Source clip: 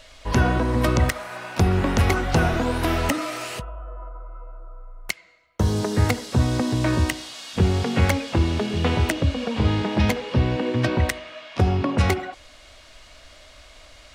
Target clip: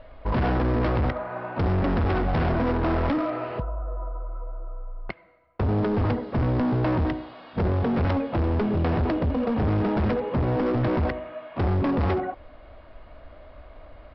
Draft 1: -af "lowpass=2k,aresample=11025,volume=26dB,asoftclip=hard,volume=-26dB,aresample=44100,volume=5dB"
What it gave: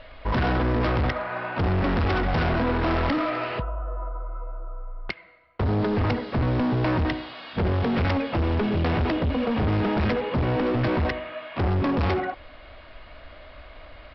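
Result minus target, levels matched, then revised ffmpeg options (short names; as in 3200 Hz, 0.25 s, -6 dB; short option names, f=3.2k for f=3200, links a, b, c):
2000 Hz band +4.5 dB
-af "lowpass=990,aresample=11025,volume=26dB,asoftclip=hard,volume=-26dB,aresample=44100,volume=5dB"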